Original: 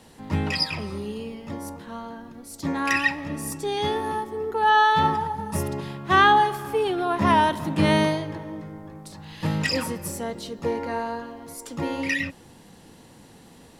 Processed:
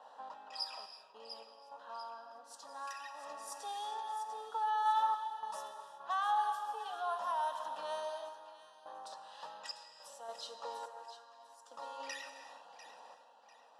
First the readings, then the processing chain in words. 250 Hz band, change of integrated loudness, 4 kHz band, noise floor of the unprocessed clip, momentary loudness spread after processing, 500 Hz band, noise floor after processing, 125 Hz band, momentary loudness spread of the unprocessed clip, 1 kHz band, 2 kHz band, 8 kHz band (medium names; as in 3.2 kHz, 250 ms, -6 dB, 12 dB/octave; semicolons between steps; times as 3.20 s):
under -40 dB, -16.0 dB, -16.0 dB, -50 dBFS, 21 LU, -19.5 dB, -61 dBFS, under -40 dB, 19 LU, -13.0 dB, -23.0 dB, -15.0 dB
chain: compression 3:1, threshold -39 dBFS, peak gain reduction 19 dB; high-pass 500 Hz 24 dB/octave; band-stop 4.4 kHz, Q 23; level-controlled noise filter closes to 2.3 kHz, open at -32.5 dBFS; static phaser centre 900 Hz, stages 4; random-step tremolo 3.5 Hz, depth 100%; feedback echo behind a high-pass 696 ms, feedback 43%, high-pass 2 kHz, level -9 dB; gated-style reverb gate 400 ms flat, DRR 6.5 dB; tape noise reduction on one side only decoder only; trim +5.5 dB